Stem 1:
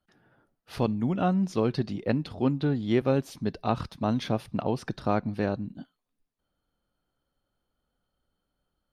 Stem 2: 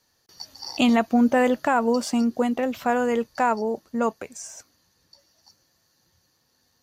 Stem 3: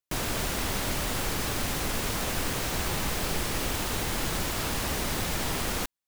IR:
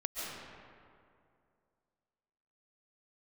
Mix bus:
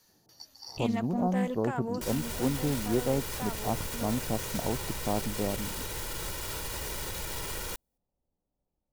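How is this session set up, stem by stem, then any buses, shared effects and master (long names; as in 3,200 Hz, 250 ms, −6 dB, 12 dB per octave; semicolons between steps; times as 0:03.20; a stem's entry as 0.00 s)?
−4.0 dB, 0.00 s, no bus, no send, Butterworth low-pass 1,000 Hz 48 dB per octave
0.0 dB, 0.00 s, bus A, no send, one-sided soft clipper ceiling −14 dBFS; automatic ducking −11 dB, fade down 0.30 s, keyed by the first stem
−5.0 dB, 1.90 s, bus A, no send, comb filter 2.1 ms, depth 56%
bus A: 0.0 dB, high-shelf EQ 7,700 Hz +8.5 dB; brickwall limiter −25.5 dBFS, peak gain reduction 10 dB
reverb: not used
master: highs frequency-modulated by the lows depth 0.13 ms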